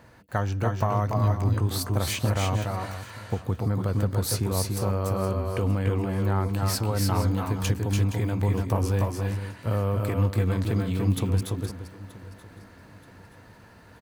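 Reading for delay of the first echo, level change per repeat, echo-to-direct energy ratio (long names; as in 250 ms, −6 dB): 288 ms, repeats not evenly spaced, −2.0 dB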